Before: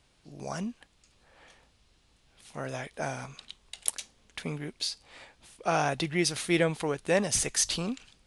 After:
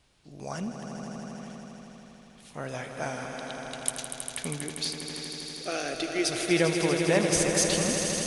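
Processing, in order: vibrato 2.8 Hz 20 cents; 5.2–6.29 fixed phaser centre 380 Hz, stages 4; swelling echo 80 ms, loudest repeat 5, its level -9.5 dB

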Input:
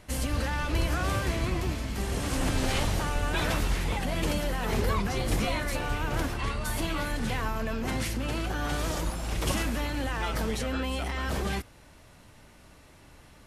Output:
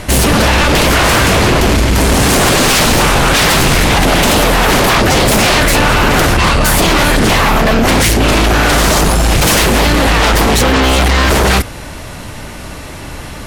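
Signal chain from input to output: sine folder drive 16 dB, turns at -13.5 dBFS; gain +7 dB

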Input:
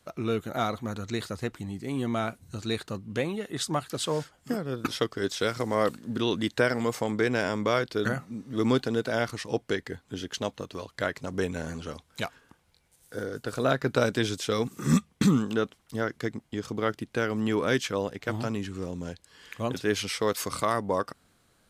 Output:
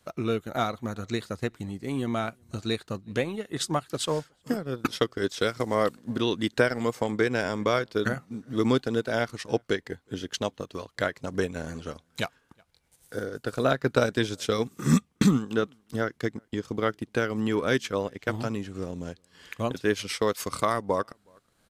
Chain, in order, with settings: outdoor echo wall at 63 m, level -27 dB; transient shaper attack +3 dB, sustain -7 dB

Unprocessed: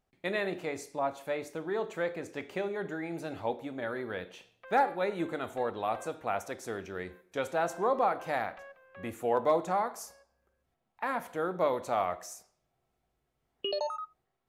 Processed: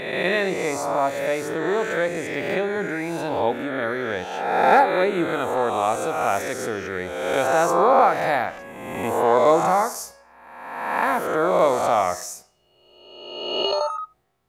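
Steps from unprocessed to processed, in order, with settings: spectral swells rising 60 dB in 1.34 s; gain +8 dB

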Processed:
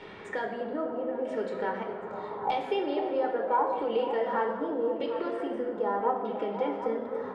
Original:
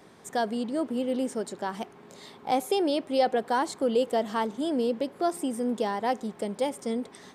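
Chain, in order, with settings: compressor 2.5:1, threshold -43 dBFS, peak gain reduction 16 dB; LFO low-pass saw down 0.8 Hz 940–3000 Hz; 5.99–6.78 speaker cabinet 170–6000 Hz, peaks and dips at 300 Hz +7 dB, 830 Hz -3 dB, 1300 Hz +7 dB, 2000 Hz -6 dB, 4400 Hz -7 dB; delay with a stepping band-pass 0.252 s, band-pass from 380 Hz, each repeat 0.7 oct, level -3.5 dB; reverb RT60 1.3 s, pre-delay 5 ms, DRR 3 dB; gain +4 dB

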